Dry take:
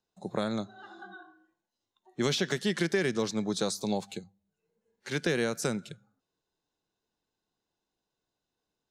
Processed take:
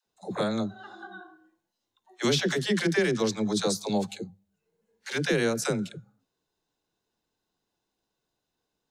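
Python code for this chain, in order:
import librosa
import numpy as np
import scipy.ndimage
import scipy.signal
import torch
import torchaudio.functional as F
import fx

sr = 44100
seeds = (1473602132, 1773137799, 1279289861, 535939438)

y = fx.dispersion(x, sr, late='lows', ms=67.0, hz=430.0)
y = y * librosa.db_to_amplitude(3.5)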